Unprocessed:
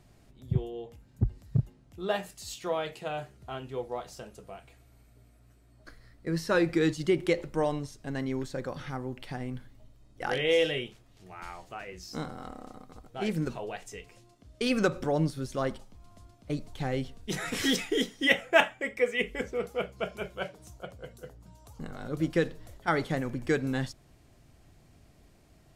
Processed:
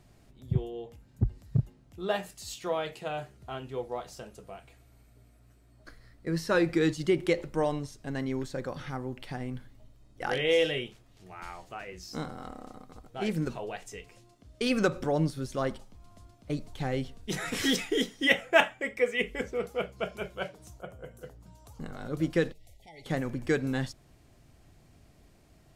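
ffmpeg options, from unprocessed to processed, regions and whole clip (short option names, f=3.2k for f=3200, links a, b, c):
-filter_complex "[0:a]asettb=1/sr,asplit=3[a][b][c];[a]atrim=end=20.814[d];[b]atrim=start=20.81:end=21.21,asetpts=PTS-STARTPTS,afade=t=in:d=0.004:c=qsin,afade=t=out:st=0.396:d=0.004:c=qsin,equalizer=f=4.3k:t=o:w=0.81:g=-14.5,bandreject=f=129:t=h:w=4,bandreject=f=258:t=h:w=4,bandreject=f=387:t=h:w=4,bandreject=f=516:t=h:w=4,bandreject=f=645:t=h:w=4,bandreject=f=774:t=h:w=4,bandreject=f=903:t=h:w=4,bandreject=f=1.032k:t=h:w=4,bandreject=f=1.161k:t=h:w=4,bandreject=f=1.29k:t=h:w=4,bandreject=f=1.419k:t=h:w=4,bandreject=f=1.548k:t=h:w=4,bandreject=f=1.677k:t=h:w=4,bandreject=f=1.806k:t=h:w=4,bandreject=f=1.935k:t=h:w=4,bandreject=f=2.064k:t=h:w=4,bandreject=f=2.193k:t=h:w=4,bandreject=f=2.322k:t=h:w=4,bandreject=f=2.451k:t=h:w=4,bandreject=f=2.58k:t=h:w=4,bandreject=f=2.709k:t=h:w=4,bandreject=f=2.838k:t=h:w=4,bandreject=f=2.967k:t=h:w=4,bandreject=f=3.096k:t=h:w=4,bandreject=f=3.225k:t=h:w=4,bandreject=f=3.354k:t=h:w=4,bandreject=f=3.483k:t=h:w=4,bandreject=f=3.612k:t=h:w=4,bandreject=f=3.741k:t=h:w=4,bandreject=f=3.87k:t=h:w=4,bandreject=f=3.999k:t=h:w=4,bandreject=f=4.128k:t=h:w=4,bandreject=f=4.257k:t=h:w=4,bandreject=f=4.386k:t=h:w=4,bandreject=f=4.515k:t=h:w=4[e];[c]atrim=start=21.206[f];[d][e]acrossfade=d=0.004:c1=hsin:c2=qsin[g];[g][f]acrossfade=d=0.004:c1=qsin:c2=hsin,asettb=1/sr,asplit=3[h][i][j];[h]atrim=end=22.524[k];[i]atrim=start=22.52:end=23.06,asetpts=PTS-STARTPTS,afade=t=in:d=0.004:c=qsin,afade=t=out:st=0.536:d=0.004:c=qsin,equalizer=f=280:w=0.5:g=-11.5,acompressor=threshold=-51dB:ratio=2.5:attack=3.2:release=140:knee=1:detection=peak,asuperstop=centerf=1300:order=20:qfactor=1.2[l];[j]atrim=start=23.056[m];[k][l]acrossfade=d=0.004:c1=hsin:c2=qsin[n];[n][m]acrossfade=d=0.004:c1=qsin:c2=hsin"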